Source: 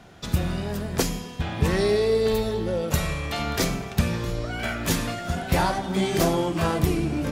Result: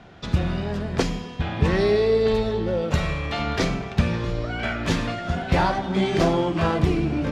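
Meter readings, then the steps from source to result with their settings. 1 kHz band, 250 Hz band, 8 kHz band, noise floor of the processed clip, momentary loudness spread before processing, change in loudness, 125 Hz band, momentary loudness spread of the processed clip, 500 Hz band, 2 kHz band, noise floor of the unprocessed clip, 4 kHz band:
+2.0 dB, +2.0 dB, -8.5 dB, -35 dBFS, 7 LU, +1.5 dB, +2.0 dB, 8 LU, +2.0 dB, +2.0 dB, -37 dBFS, -0.5 dB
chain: low-pass 4.1 kHz 12 dB/octave; trim +2 dB

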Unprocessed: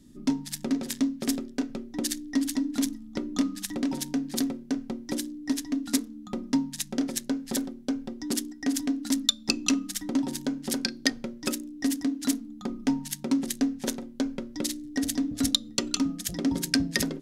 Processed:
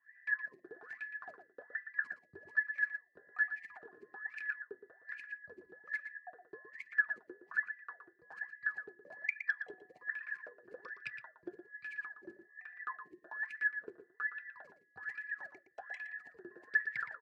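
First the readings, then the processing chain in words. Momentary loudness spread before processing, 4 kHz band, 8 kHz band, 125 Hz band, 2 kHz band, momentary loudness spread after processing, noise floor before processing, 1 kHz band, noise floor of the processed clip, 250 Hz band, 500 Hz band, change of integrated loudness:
7 LU, under -35 dB, under -40 dB, under -30 dB, +4.5 dB, 18 LU, -47 dBFS, -9.0 dB, -71 dBFS, -35.5 dB, -16.5 dB, -10.0 dB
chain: every band turned upside down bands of 2 kHz; high-pass 140 Hz 12 dB/octave; wah-wah 1.2 Hz 350–2500 Hz, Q 14; tilt EQ -4.5 dB/octave; echo from a far wall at 20 m, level -9 dB; trim +3.5 dB

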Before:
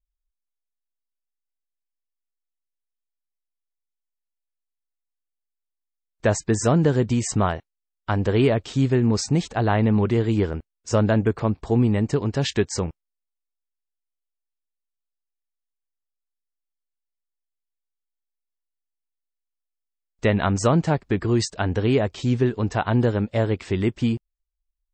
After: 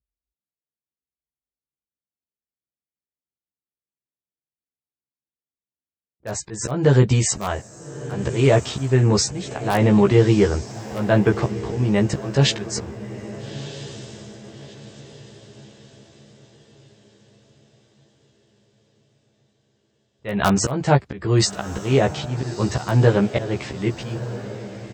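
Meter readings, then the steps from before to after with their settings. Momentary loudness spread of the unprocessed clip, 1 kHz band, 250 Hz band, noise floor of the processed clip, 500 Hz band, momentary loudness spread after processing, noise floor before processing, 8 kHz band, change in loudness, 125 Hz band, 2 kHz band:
6 LU, +1.5 dB, +0.5 dB, under -85 dBFS, +2.0 dB, 17 LU, -83 dBFS, +5.5 dB, +2.0 dB, +2.5 dB, +2.5 dB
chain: level-controlled noise filter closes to 380 Hz, open at -20.5 dBFS; high-pass 63 Hz 24 dB/octave; dynamic bell 250 Hz, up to -6 dB, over -36 dBFS, Q 2.6; in parallel at -8.5 dB: integer overflow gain 7.5 dB; on the sum: slow attack 278 ms; doubling 15 ms -2.5 dB; on a send: echo that smears into a reverb 1285 ms, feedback 43%, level -13.5 dB; on the sum: trim +2.5 dB

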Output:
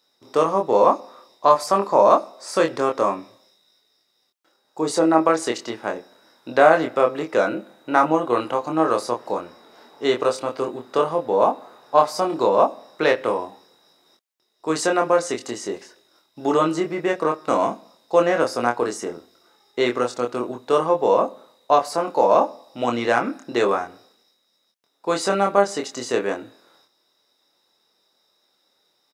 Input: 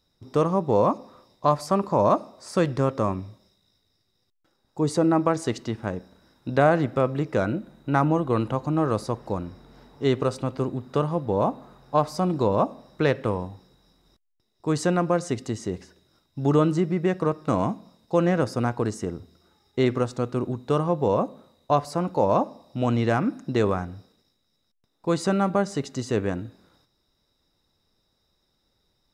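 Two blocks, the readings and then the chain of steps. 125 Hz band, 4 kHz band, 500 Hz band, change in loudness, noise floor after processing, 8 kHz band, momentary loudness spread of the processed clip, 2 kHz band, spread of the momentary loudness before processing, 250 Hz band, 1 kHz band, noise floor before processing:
-11.5 dB, +7.0 dB, +5.0 dB, +4.0 dB, -68 dBFS, +7.0 dB, 12 LU, +7.0 dB, 11 LU, -1.0 dB, +6.5 dB, -72 dBFS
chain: high-pass 430 Hz 12 dB/octave; doubling 25 ms -4 dB; trim +5.5 dB

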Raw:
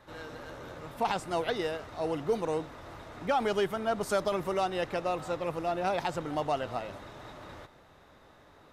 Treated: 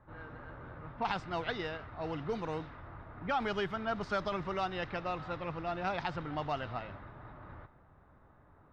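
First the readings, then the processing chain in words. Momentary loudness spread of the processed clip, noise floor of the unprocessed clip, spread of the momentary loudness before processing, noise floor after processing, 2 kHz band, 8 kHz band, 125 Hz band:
15 LU, -58 dBFS, 16 LU, -62 dBFS, -1.0 dB, under -15 dB, 0.0 dB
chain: level-controlled noise filter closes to 1 kHz, open at -24.5 dBFS; FFT filter 110 Hz 0 dB, 510 Hz -11 dB, 1.4 kHz -2 dB, 5.1 kHz -7 dB, 9.4 kHz -26 dB; trim +2 dB

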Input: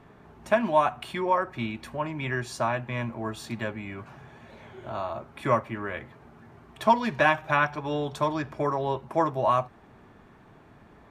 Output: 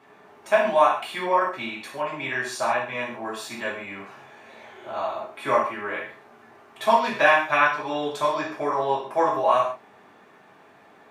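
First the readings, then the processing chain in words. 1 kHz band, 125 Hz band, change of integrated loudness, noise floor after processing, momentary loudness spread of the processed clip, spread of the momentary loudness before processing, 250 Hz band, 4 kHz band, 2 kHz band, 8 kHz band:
+4.0 dB, -10.5 dB, +3.5 dB, -53 dBFS, 15 LU, 13 LU, -2.5 dB, +5.5 dB, +5.5 dB, +5.5 dB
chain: high-pass 200 Hz 12 dB/octave; bass shelf 320 Hz -9.5 dB; gated-style reverb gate 180 ms falling, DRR -4.5 dB

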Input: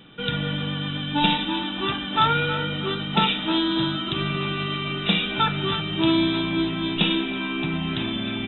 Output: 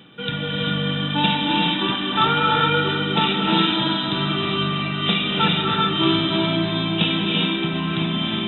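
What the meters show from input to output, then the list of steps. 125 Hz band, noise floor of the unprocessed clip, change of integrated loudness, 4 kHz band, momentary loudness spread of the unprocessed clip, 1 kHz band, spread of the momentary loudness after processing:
+3.5 dB, -30 dBFS, +3.5 dB, +4.5 dB, 6 LU, +4.0 dB, 5 LU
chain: high-pass 89 Hz; reverse; upward compressor, threshold -32 dBFS; reverse; echo whose repeats swap between lows and highs 226 ms, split 1.9 kHz, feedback 72%, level -12.5 dB; gated-style reverb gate 440 ms rising, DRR -1.5 dB

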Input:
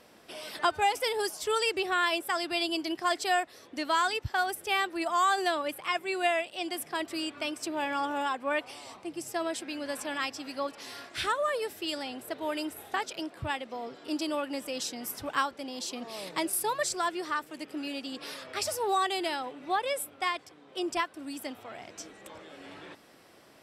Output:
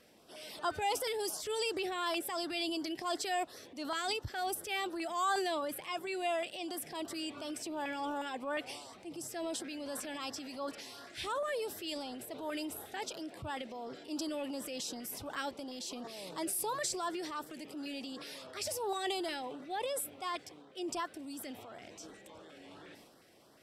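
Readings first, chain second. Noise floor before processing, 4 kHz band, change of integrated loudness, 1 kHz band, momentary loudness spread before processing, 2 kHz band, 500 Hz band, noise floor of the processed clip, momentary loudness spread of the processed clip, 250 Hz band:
-56 dBFS, -6.0 dB, -6.5 dB, -8.0 dB, 13 LU, -9.5 dB, -5.5 dB, -57 dBFS, 12 LU, -4.5 dB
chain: transient shaper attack -4 dB, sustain +7 dB; LFO notch saw up 2.8 Hz 830–2800 Hz; trim -5 dB

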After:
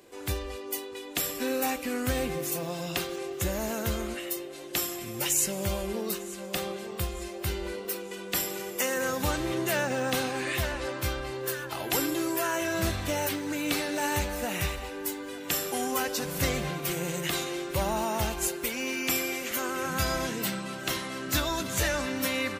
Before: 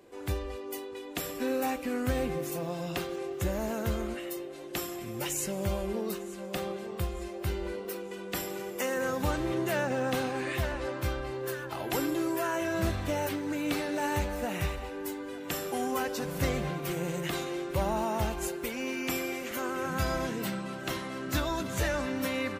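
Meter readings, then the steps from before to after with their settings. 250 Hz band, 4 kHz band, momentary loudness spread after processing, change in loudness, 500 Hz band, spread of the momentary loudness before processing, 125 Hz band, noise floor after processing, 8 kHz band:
0.0 dB, +6.5 dB, 7 LU, +2.5 dB, +0.5 dB, 7 LU, 0.0 dB, -40 dBFS, +8.5 dB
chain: treble shelf 2.2 kHz +9 dB

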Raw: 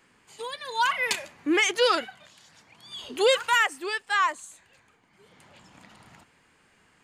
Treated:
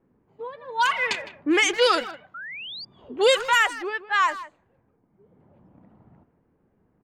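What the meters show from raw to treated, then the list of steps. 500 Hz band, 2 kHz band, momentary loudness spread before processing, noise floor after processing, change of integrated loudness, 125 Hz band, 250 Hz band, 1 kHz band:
+2.5 dB, +2.5 dB, 18 LU, -67 dBFS, +2.0 dB, no reading, +2.5 dB, +2.5 dB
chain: level-controlled noise filter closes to 460 Hz, open at -18 dBFS; speakerphone echo 160 ms, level -14 dB; painted sound rise, 2.34–2.85 s, 1.3–4.9 kHz -39 dBFS; trim +2.5 dB

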